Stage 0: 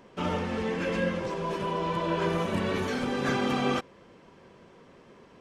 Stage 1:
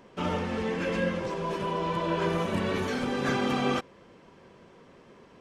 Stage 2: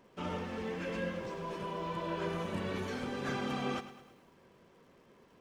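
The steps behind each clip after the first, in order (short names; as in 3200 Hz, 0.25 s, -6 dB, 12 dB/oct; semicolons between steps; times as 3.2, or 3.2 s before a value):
nothing audible
crackle 250/s -56 dBFS; lo-fi delay 0.106 s, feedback 55%, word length 9-bit, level -13 dB; gain -8.5 dB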